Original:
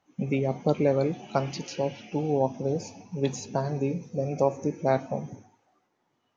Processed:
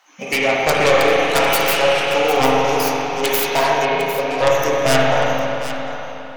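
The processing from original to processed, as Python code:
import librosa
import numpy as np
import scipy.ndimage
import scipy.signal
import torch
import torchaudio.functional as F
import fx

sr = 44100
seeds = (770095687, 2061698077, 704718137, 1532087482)

y = fx.tracing_dist(x, sr, depth_ms=0.33)
y = scipy.signal.sosfilt(scipy.signal.butter(2, 1100.0, 'highpass', fs=sr, output='sos'), y)
y = fx.fold_sine(y, sr, drive_db=16, ceiling_db=-13.5)
y = fx.air_absorb(y, sr, metres=220.0, at=(3.85, 4.47))
y = y + 10.0 ** (-12.0 / 20.0) * np.pad(y, (int(753 * sr / 1000.0), 0))[:len(y)]
y = fx.rev_spring(y, sr, rt60_s=3.2, pass_ms=(34, 45), chirp_ms=55, drr_db=-4.5)
y = y * librosa.db_to_amplitude(1.5)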